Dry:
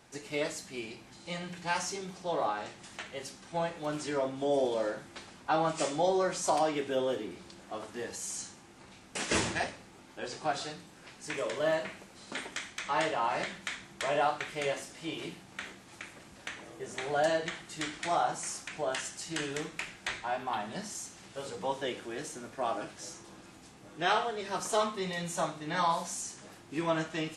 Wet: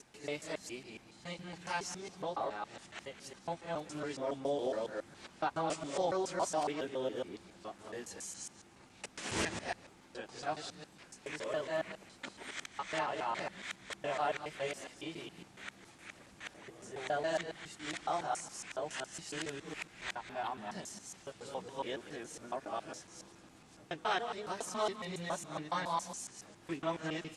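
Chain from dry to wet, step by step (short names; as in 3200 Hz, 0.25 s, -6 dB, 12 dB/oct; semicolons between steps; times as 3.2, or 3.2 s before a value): local time reversal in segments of 0.139 s; Doppler distortion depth 0.14 ms; gain -5.5 dB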